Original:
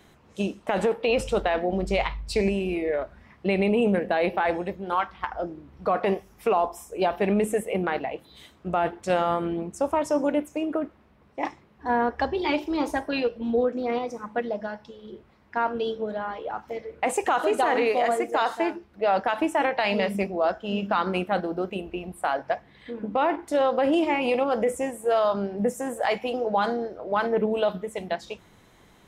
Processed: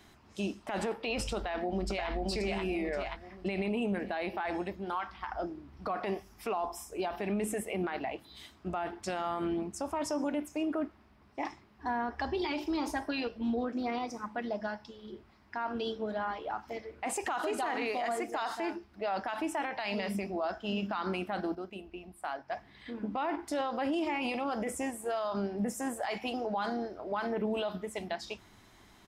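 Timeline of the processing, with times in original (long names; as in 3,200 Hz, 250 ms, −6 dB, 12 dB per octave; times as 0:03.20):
0:01.37–0:02.10: delay throw 530 ms, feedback 35%, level −2 dB
0:21.55–0:22.52: clip gain −8.5 dB
whole clip: thirty-one-band graphic EQ 160 Hz −8 dB, 500 Hz −11 dB, 5,000 Hz +7 dB; brickwall limiter −23 dBFS; level −2 dB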